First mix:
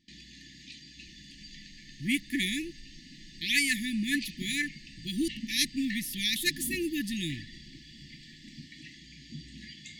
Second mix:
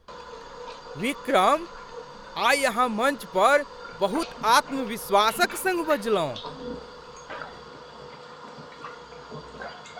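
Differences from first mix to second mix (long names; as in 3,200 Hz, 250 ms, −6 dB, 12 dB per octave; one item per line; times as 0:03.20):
speech: entry −1.05 s
master: remove linear-phase brick-wall band-stop 350–1,700 Hz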